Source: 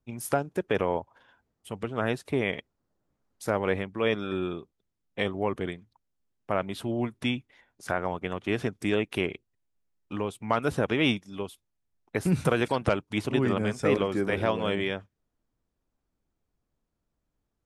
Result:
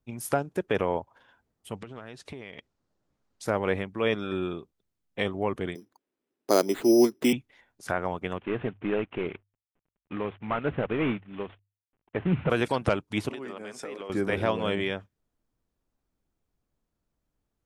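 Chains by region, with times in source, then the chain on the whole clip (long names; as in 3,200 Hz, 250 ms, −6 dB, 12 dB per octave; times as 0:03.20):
0:01.77–0:03.45: low-pass filter 6,200 Hz + high-shelf EQ 3,100 Hz +6.5 dB + downward compressor 16 to 1, threshold −36 dBFS
0:05.75–0:07.33: high-pass filter 250 Hz + parametric band 350 Hz +15 dB 1.3 octaves + bad sample-rate conversion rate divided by 8×, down none, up hold
0:08.38–0:12.50: variable-slope delta modulation 16 kbit/s + mains-hum notches 50/100 Hz
0:13.29–0:14.10: high-pass filter 320 Hz + downward compressor 8 to 1, threshold −34 dBFS
whole clip: no processing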